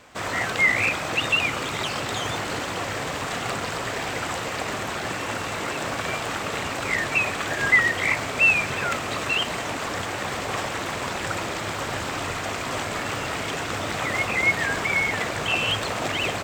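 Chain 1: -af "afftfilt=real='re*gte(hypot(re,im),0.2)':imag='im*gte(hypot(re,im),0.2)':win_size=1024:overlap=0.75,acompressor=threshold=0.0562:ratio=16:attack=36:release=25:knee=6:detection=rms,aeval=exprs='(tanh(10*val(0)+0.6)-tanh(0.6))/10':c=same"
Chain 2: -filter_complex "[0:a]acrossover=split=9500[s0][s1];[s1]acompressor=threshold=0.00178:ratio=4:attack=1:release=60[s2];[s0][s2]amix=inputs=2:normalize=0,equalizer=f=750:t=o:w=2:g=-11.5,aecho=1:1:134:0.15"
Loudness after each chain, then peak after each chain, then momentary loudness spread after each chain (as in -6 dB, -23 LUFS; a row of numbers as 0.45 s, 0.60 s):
-31.0 LUFS, -27.5 LUFS; -18.0 dBFS, -11.0 dBFS; 22 LU, 10 LU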